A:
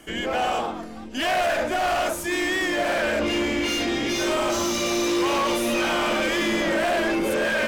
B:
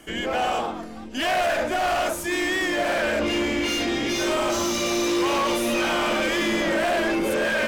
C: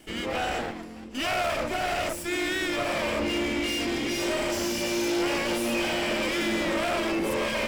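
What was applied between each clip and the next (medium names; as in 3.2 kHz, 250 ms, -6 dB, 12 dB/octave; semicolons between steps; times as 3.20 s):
no audible change
comb filter that takes the minimum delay 0.39 ms; trim -3 dB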